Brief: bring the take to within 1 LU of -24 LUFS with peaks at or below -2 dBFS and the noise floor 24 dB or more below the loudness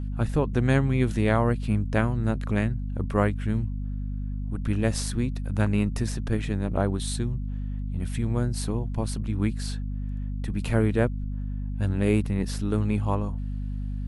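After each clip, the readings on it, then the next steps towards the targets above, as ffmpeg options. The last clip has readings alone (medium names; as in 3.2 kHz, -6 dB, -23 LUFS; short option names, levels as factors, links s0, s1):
hum 50 Hz; highest harmonic 250 Hz; hum level -28 dBFS; loudness -27.5 LUFS; peak level -7.0 dBFS; loudness target -24.0 LUFS
-> -af "bandreject=f=50:t=h:w=4,bandreject=f=100:t=h:w=4,bandreject=f=150:t=h:w=4,bandreject=f=200:t=h:w=4,bandreject=f=250:t=h:w=4"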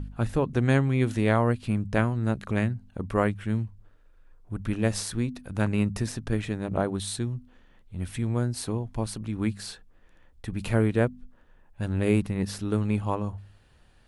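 hum not found; loudness -28.0 LUFS; peak level -8.0 dBFS; loudness target -24.0 LUFS
-> -af "volume=1.58"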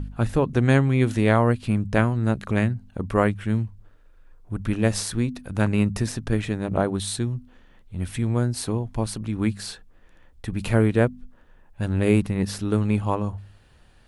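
loudness -24.0 LUFS; peak level -4.0 dBFS; noise floor -54 dBFS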